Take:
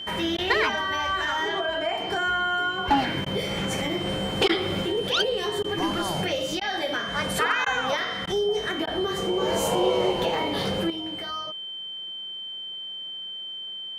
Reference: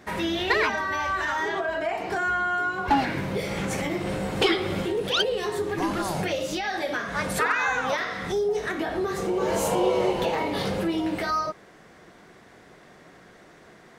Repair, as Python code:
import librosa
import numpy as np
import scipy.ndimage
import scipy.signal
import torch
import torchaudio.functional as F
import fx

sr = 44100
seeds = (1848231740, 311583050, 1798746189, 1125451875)

y = fx.notch(x, sr, hz=3100.0, q=30.0)
y = fx.fix_interpolate(y, sr, at_s=(0.37, 3.25, 4.48, 5.63, 6.6, 7.65, 8.26, 8.86), length_ms=11.0)
y = fx.gain(y, sr, db=fx.steps((0.0, 0.0), (10.9, 9.0)))